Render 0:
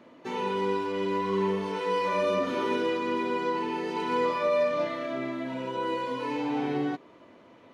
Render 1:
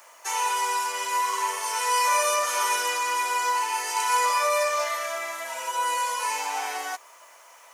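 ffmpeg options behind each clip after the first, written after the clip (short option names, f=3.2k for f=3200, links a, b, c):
-af "aexciter=amount=6.7:drive=9.1:freq=5.7k,highpass=f=770:w=0.5412,highpass=f=770:w=1.3066,volume=8dB"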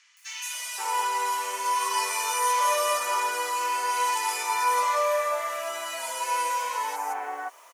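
-filter_complex "[0:a]acrossover=split=1900|6000[a][b][c];[c]adelay=170[d];[a]adelay=530[e];[e][b][d]amix=inputs=3:normalize=0"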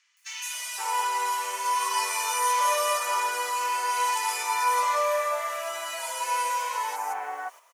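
-af "agate=range=-8dB:threshold=-44dB:ratio=16:detection=peak,highpass=430"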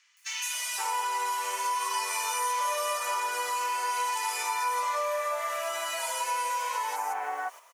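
-af "acompressor=threshold=-32dB:ratio=3,volume=3dB"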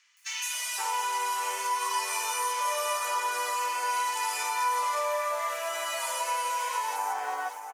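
-af "aecho=1:1:575:0.355"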